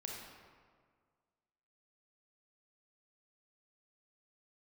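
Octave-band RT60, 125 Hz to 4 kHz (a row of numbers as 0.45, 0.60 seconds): 1.9, 1.9, 1.8, 1.8, 1.4, 1.0 seconds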